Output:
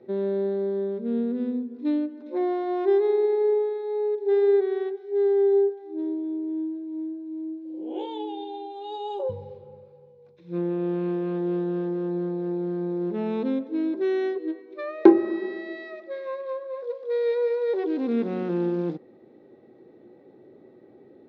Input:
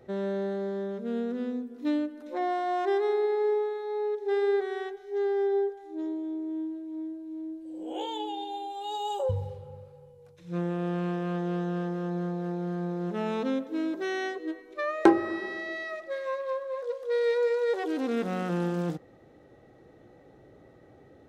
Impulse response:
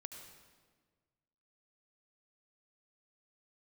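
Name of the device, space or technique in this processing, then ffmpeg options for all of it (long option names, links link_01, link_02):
kitchen radio: -af "highpass=170,equalizer=frequency=230:width_type=q:width=4:gain=7,equalizer=frequency=370:width_type=q:width=4:gain=9,equalizer=frequency=710:width_type=q:width=4:gain=-4,equalizer=frequency=1300:width_type=q:width=4:gain=-7,equalizer=frequency=1800:width_type=q:width=4:gain=-5,equalizer=frequency=3000:width_type=q:width=4:gain=-7,lowpass=frequency=4100:width=0.5412,lowpass=frequency=4100:width=1.3066"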